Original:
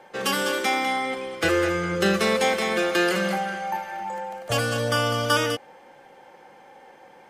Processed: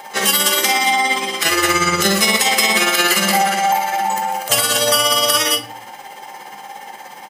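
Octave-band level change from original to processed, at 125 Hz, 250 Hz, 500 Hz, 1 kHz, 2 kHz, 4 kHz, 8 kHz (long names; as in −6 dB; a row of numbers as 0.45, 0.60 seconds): −0.5, +3.0, +2.0, +9.5, +8.0, +13.5, +17.5 decibels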